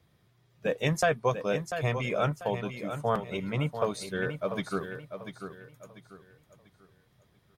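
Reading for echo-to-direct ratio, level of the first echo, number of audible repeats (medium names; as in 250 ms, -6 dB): -8.5 dB, -9.0 dB, 3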